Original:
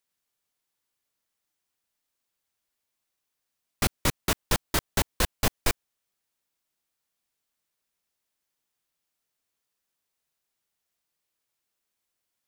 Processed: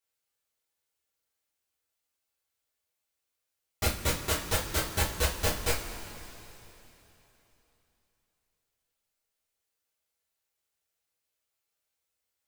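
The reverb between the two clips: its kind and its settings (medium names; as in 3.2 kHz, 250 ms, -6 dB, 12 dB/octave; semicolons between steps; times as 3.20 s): two-slope reverb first 0.28 s, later 3.4 s, from -18 dB, DRR -7 dB; trim -9.5 dB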